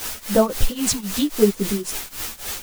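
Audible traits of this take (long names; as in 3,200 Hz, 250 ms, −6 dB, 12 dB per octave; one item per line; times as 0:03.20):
phaser sweep stages 2, 0.77 Hz, lowest notch 450–3,600 Hz
a quantiser's noise floor 6 bits, dither triangular
tremolo triangle 3.7 Hz, depth 95%
a shimmering, thickened sound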